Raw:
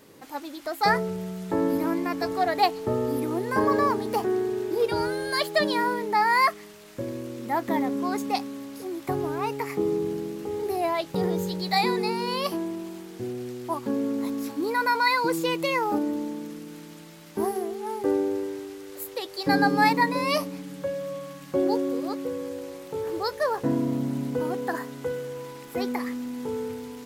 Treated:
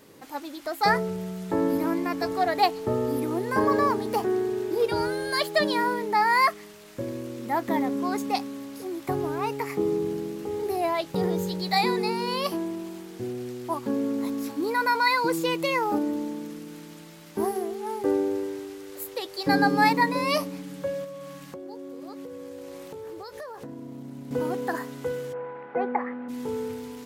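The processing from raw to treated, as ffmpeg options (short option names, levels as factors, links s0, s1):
-filter_complex "[0:a]asettb=1/sr,asplit=3[s0][s1][s2];[s0]atrim=end=21.044[s3];[s1]atrim=start=21.04:end=24.31,asetpts=PTS-STARTPTS,afade=t=in:d=0.004:c=qsin,afade=t=out:st=3.266:d=0.004:c=qsin,acompressor=threshold=0.0178:ratio=20:attack=3.2:release=140:knee=1:detection=peak[s4];[s2]atrim=start=24.306[s5];[s3][s4]acrossfade=d=0.004:c1=hsin:c2=qsin[s6];[s6][s5]acrossfade=d=0.004:c1=qsin:c2=hsin,asplit=3[s7][s8][s9];[s7]afade=t=out:st=25.32:d=0.02[s10];[s8]highpass=f=160:w=0.5412,highpass=f=160:w=1.3066,equalizer=f=280:t=q:w=4:g=-8,equalizer=f=550:t=q:w=4:g=5,equalizer=f=800:t=q:w=4:g=9,equalizer=f=1500:t=q:w=4:g=5,lowpass=f=2100:w=0.5412,lowpass=f=2100:w=1.3066,afade=t=in:st=25.32:d=0.02,afade=t=out:st=26.28:d=0.02[s11];[s9]afade=t=in:st=26.28:d=0.02[s12];[s10][s11][s12]amix=inputs=3:normalize=0"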